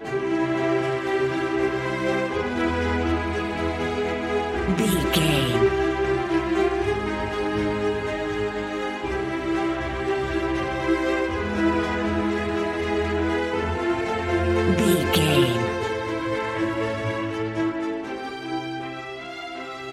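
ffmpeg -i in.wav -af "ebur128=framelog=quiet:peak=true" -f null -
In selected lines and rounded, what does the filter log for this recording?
Integrated loudness:
  I:         -24.2 LUFS
  Threshold: -34.2 LUFS
Loudness range:
  LRA:         3.7 LU
  Threshold: -43.9 LUFS
  LRA low:   -26.0 LUFS
  LRA high:  -22.3 LUFS
True peak:
  Peak:       -5.9 dBFS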